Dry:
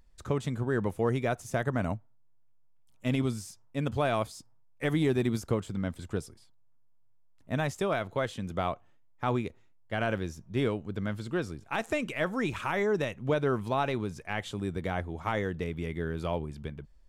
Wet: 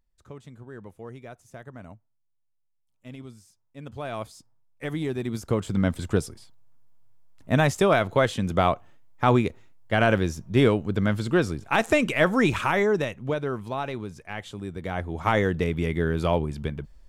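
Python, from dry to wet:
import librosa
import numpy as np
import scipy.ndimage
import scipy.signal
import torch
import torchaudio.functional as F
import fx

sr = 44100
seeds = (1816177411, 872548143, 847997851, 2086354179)

y = fx.gain(x, sr, db=fx.line((3.63, -13.0), (4.26, -2.5), (5.24, -2.5), (5.78, 9.5), (12.52, 9.5), (13.49, -1.5), (14.76, -1.5), (15.28, 8.5)))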